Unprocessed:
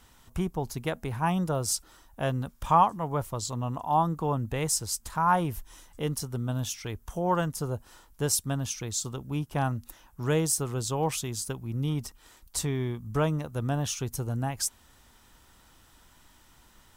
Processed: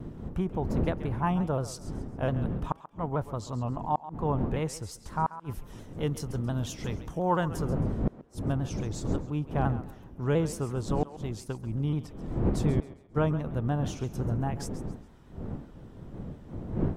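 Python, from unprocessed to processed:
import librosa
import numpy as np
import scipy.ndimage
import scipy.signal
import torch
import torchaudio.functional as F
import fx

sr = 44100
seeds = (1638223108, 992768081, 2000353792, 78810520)

y = fx.dmg_wind(x, sr, seeds[0], corner_hz=230.0, level_db=-30.0)
y = fx.lowpass(y, sr, hz=fx.steps((0.0, 1400.0), (5.24, 3100.0), (7.65, 1400.0)), slope=6)
y = fx.gate_flip(y, sr, shuts_db=-15.0, range_db=-39)
y = fx.echo_thinned(y, sr, ms=135, feedback_pct=33, hz=400.0, wet_db=-13.5)
y = fx.vibrato_shape(y, sr, shape='saw_down', rate_hz=5.7, depth_cents=100.0)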